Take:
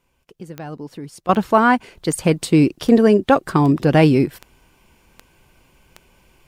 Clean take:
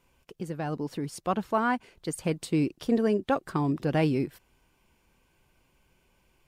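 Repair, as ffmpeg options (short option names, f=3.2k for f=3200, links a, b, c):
-af "adeclick=t=4,asetnsamples=n=441:p=0,asendcmd='1.29 volume volume -12dB',volume=0dB"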